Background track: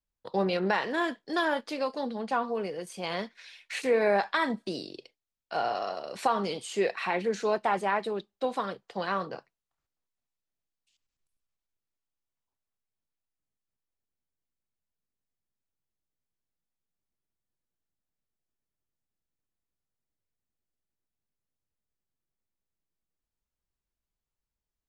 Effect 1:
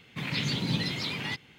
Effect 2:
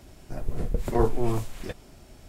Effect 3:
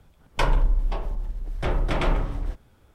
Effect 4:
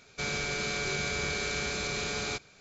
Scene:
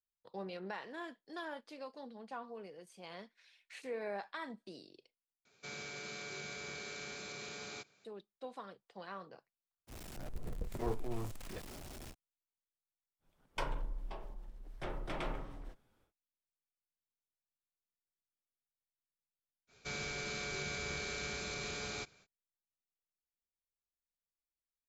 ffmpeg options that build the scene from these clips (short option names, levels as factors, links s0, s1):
-filter_complex "[4:a]asplit=2[s0][s1];[0:a]volume=0.15[s2];[s0]highpass=140[s3];[2:a]aeval=exprs='val(0)+0.5*0.0376*sgn(val(0))':c=same[s4];[3:a]equalizer=f=63:w=0.78:g=-12[s5];[s2]asplit=2[s6][s7];[s6]atrim=end=5.454[s8];[s3]atrim=end=2.6,asetpts=PTS-STARTPTS,volume=0.224[s9];[s7]atrim=start=8.046[s10];[s4]atrim=end=2.28,asetpts=PTS-STARTPTS,volume=0.168,afade=t=in:d=0.05,afade=t=out:st=2.23:d=0.05,adelay=9870[s11];[s5]atrim=end=2.94,asetpts=PTS-STARTPTS,volume=0.211,afade=t=in:d=0.1,afade=t=out:st=2.84:d=0.1,adelay=13190[s12];[s1]atrim=end=2.6,asetpts=PTS-STARTPTS,volume=0.376,afade=t=in:d=0.05,afade=t=out:st=2.55:d=0.05,adelay=19670[s13];[s8][s9]acrossfade=d=0.004:c1=hsin:c2=hsin[s14];[s14][s10]acrossfade=d=0.004:c1=hsin:c2=hsin[s15];[s15][s11][s12][s13]amix=inputs=4:normalize=0"